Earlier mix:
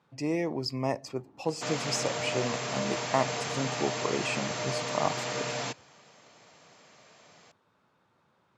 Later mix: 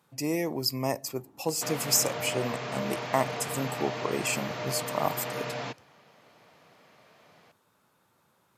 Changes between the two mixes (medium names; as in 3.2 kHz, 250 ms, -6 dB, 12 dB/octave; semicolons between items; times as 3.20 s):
speech: remove distance through air 130 m; second sound: add distance through air 170 m